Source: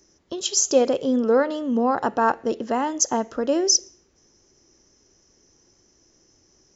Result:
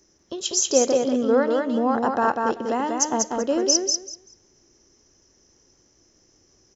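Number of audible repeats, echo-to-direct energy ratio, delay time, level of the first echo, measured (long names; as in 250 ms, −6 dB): 3, −3.5 dB, 192 ms, −3.5 dB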